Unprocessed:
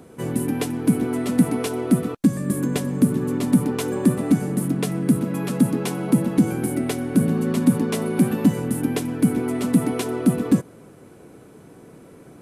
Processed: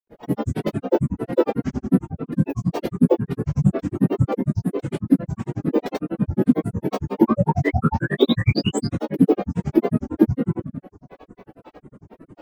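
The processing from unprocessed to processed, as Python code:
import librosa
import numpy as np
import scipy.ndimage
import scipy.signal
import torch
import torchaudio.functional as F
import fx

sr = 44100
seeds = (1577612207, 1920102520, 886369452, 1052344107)

y = fx.peak_eq(x, sr, hz=6900.0, db=-8.0, octaves=0.94)
y = fx.echo_wet_bandpass(y, sr, ms=578, feedback_pct=74, hz=1200.0, wet_db=-18.5)
y = fx.spec_paint(y, sr, seeds[0], shape='rise', start_s=7.13, length_s=1.76, low_hz=660.0, high_hz=5700.0, level_db=-24.0)
y = fx.high_shelf(y, sr, hz=3200.0, db=-10.0)
y = fx.room_shoebox(y, sr, seeds[1], volume_m3=38.0, walls='mixed', distance_m=3.0)
y = fx.granulator(y, sr, seeds[2], grain_ms=83.0, per_s=11.0, spray_ms=100.0, spread_st=12)
y = fx.dereverb_blind(y, sr, rt60_s=0.5)
y = y * librosa.db_to_amplitude(-11.0)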